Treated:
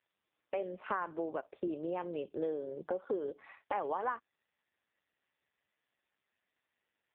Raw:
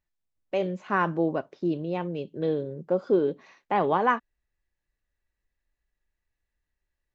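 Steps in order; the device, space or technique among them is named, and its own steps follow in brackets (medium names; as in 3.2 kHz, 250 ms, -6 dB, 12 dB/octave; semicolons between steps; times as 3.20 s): voicemail (band-pass 420–3300 Hz; compression 6:1, threshold -38 dBFS, peak gain reduction 18.5 dB; trim +5.5 dB; AMR-NB 5.15 kbps 8 kHz)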